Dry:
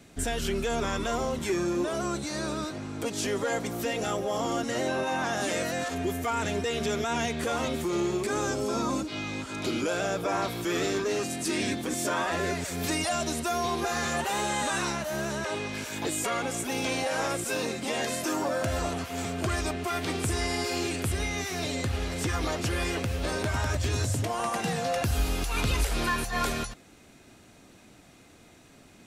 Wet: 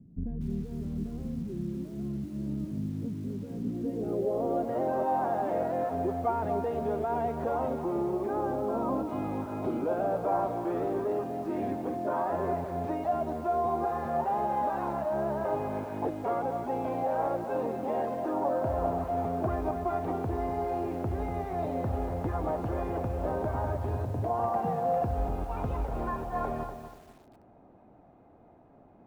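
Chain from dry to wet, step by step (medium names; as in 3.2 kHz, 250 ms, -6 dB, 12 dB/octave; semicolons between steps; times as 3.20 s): gain riding 0.5 s; low-pass sweep 190 Hz -> 800 Hz, 3.45–4.79 s; bit-crushed delay 242 ms, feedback 35%, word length 8-bit, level -9 dB; trim -3.5 dB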